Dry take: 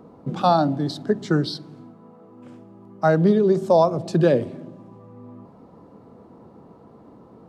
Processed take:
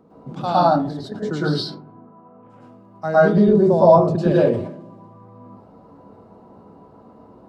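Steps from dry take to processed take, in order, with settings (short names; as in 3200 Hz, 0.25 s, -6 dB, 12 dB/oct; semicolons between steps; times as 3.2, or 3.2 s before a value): 0.67–1.12 level quantiser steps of 14 dB; 1.62–2.49 LPF 1300 Hz -> 2100 Hz 12 dB/oct; 3.37–4.16 tilt -2.5 dB/oct; reverb RT60 0.30 s, pre-delay 0.102 s, DRR -8.5 dB; sustainer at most 76 dB/s; gain -7.5 dB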